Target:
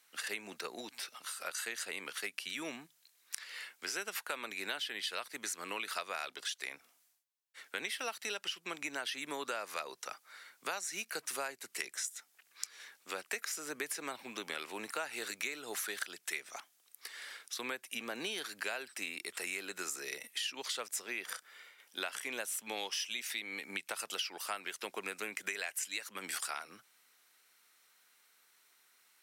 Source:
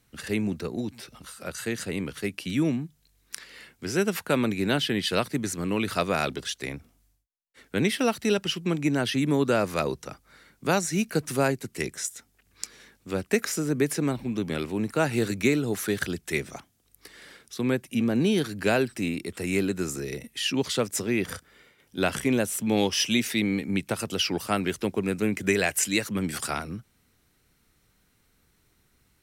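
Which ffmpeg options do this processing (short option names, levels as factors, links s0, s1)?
-af "highpass=900,acompressor=threshold=0.0126:ratio=6,volume=1.26"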